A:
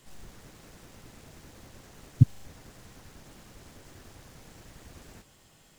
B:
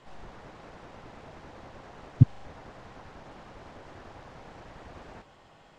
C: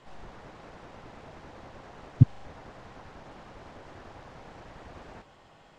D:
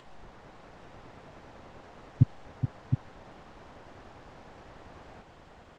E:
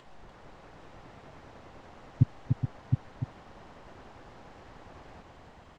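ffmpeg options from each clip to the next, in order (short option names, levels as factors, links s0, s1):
-af "lowpass=3900,equalizer=f=820:w=0.67:g=10.5"
-af anull
-filter_complex "[0:a]asplit=2[s0][s1];[s1]aecho=0:1:421|714:0.355|0.473[s2];[s0][s2]amix=inputs=2:normalize=0,acompressor=mode=upward:threshold=0.00562:ratio=2.5,volume=0.631"
-af "aecho=1:1:294:0.531,volume=0.841"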